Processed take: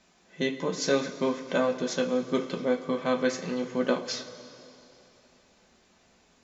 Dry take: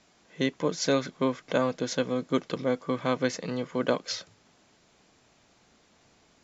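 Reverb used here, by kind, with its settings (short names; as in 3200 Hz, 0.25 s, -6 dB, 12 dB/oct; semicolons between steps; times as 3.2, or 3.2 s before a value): two-slope reverb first 0.23 s, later 3 s, from -18 dB, DRR 1 dB; gain -2.5 dB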